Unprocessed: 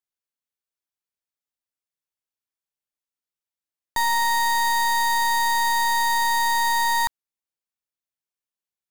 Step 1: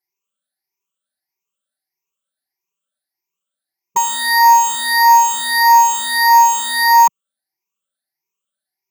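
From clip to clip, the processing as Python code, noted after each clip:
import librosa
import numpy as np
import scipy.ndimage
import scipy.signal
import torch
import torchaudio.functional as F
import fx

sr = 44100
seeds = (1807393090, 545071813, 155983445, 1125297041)

y = fx.spec_ripple(x, sr, per_octave=0.76, drift_hz=1.6, depth_db=24)
y = fx.highpass(y, sr, hz=190.0, slope=6)
y = y + 0.89 * np.pad(y, (int(5.2 * sr / 1000.0), 0))[:len(y)]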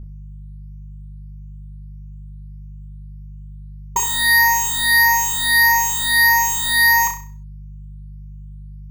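y = fx.dynamic_eq(x, sr, hz=920.0, q=0.91, threshold_db=-22.0, ratio=4.0, max_db=-7)
y = fx.dmg_buzz(y, sr, base_hz=50.0, harmonics=4, level_db=-33.0, tilt_db=-9, odd_only=False)
y = fx.room_flutter(y, sr, wall_m=5.6, rt60_s=0.39)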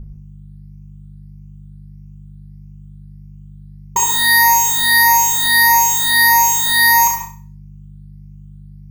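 y = fx.rev_gated(x, sr, seeds[0], gate_ms=180, shape='flat', drr_db=4.5)
y = y * 10.0 ** (2.5 / 20.0)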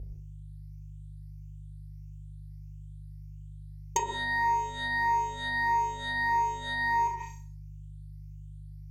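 y = fx.highpass(x, sr, hz=73.0, slope=6)
y = fx.env_lowpass_down(y, sr, base_hz=940.0, full_db=-11.5)
y = fx.fixed_phaser(y, sr, hz=480.0, stages=4)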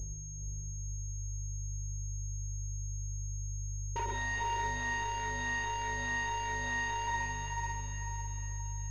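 y = np.clip(10.0 ** (33.0 / 20.0) * x, -1.0, 1.0) / 10.0 ** (33.0 / 20.0)
y = fx.echo_diffused(y, sr, ms=464, feedback_pct=50, wet_db=-3.5)
y = fx.pwm(y, sr, carrier_hz=6500.0)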